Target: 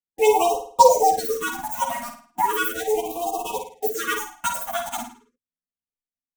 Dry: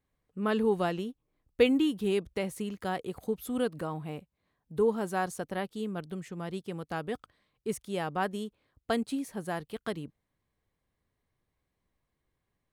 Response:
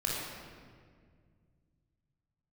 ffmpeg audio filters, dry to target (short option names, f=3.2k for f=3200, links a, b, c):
-filter_complex "[0:a]afftfilt=real='re':imag='-im':win_size=2048:overlap=0.75,asplit=2[a][b];[b]acrusher=bits=6:mix=0:aa=0.000001,volume=-5dB[c];[a][c]amix=inputs=2:normalize=0,adynamicequalizer=threshold=0.00562:dfrequency=360:dqfactor=3.6:tfrequency=360:tqfactor=3.6:attack=5:release=100:ratio=0.375:range=2:mode=boostabove:tftype=bell,agate=range=-33dB:threshold=-43dB:ratio=3:detection=peak,asplit=2[d][e];[e]adelay=107,lowpass=f=5k:p=1,volume=-6dB,asplit=2[f][g];[g]adelay=107,lowpass=f=5k:p=1,volume=0.46,asplit=2[h][i];[i]adelay=107,lowpass=f=5k:p=1,volume=0.46,asplit=2[j][k];[k]adelay=107,lowpass=f=5k:p=1,volume=0.46,asplit=2[l][m];[m]adelay=107,lowpass=f=5k:p=1,volume=0.46,asplit=2[n][o];[o]adelay=107,lowpass=f=5k:p=1,volume=0.46[p];[f][h][j][l][n][p]amix=inputs=6:normalize=0[q];[d][q]amix=inputs=2:normalize=0,asetrate=88200,aresample=44100,tiltshelf=f=850:g=4,aexciter=amount=3.1:drive=7.9:freq=6.5k,aecho=1:1:4.2:0.98,afftfilt=real='re*(1-between(b*sr/1024,370*pow(1800/370,0.5+0.5*sin(2*PI*0.37*pts/sr))/1.41,370*pow(1800/370,0.5+0.5*sin(2*PI*0.37*pts/sr))*1.41))':imag='im*(1-between(b*sr/1024,370*pow(1800/370,0.5+0.5*sin(2*PI*0.37*pts/sr))/1.41,370*pow(1800/370,0.5+0.5*sin(2*PI*0.37*pts/sr))*1.41))':win_size=1024:overlap=0.75,volume=5dB"